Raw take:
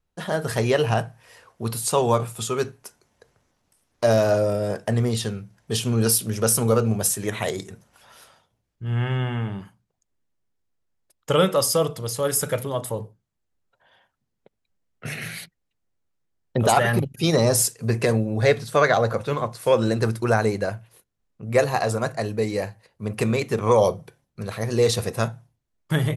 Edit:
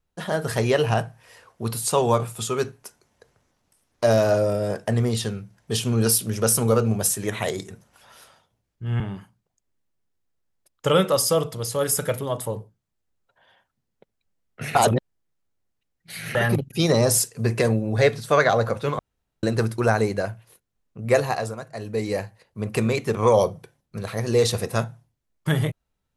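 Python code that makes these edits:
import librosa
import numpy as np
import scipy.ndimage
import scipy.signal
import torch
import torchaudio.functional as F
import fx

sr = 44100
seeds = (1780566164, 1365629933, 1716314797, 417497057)

y = fx.edit(x, sr, fx.cut(start_s=9.0, length_s=0.44),
    fx.reverse_span(start_s=15.19, length_s=1.6),
    fx.room_tone_fill(start_s=19.43, length_s=0.44),
    fx.fade_down_up(start_s=21.64, length_s=0.9, db=-14.0, fade_s=0.45), tone=tone)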